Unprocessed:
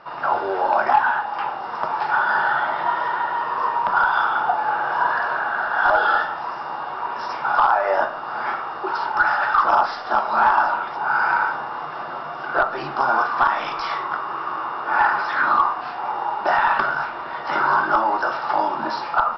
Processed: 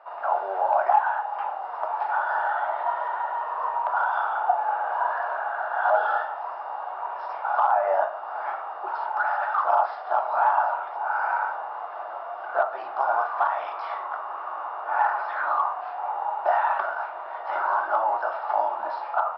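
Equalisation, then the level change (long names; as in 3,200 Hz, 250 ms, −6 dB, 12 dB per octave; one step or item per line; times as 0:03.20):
high-pass with resonance 670 Hz, resonance Q 3.4
high-frequency loss of the air 290 metres
−9.0 dB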